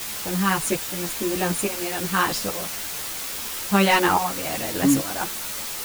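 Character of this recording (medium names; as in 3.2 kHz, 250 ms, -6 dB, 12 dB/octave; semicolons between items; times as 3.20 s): tremolo saw up 1.2 Hz, depth 80%; a quantiser's noise floor 6-bit, dither triangular; a shimmering, thickened sound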